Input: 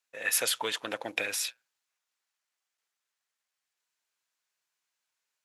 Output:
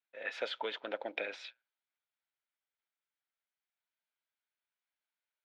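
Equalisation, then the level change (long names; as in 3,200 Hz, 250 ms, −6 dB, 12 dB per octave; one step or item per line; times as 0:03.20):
loudspeaker in its box 320–3,200 Hz, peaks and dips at 330 Hz −5 dB, 470 Hz −7 dB, 750 Hz −4 dB, 1,100 Hz −10 dB, 1,800 Hz −6 dB, 2,700 Hz −7 dB
dynamic equaliser 470 Hz, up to +7 dB, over −53 dBFS, Q 0.86
−2.5 dB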